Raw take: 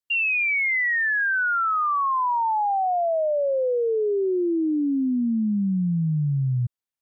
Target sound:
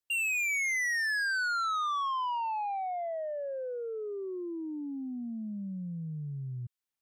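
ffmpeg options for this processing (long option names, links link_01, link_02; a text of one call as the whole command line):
ffmpeg -i in.wav -filter_complex "[0:a]acrossover=split=1200[link_01][link_02];[link_01]acompressor=threshold=-36dB:ratio=10[link_03];[link_03][link_02]amix=inputs=2:normalize=0,asoftclip=type=tanh:threshold=-29dB" out.wav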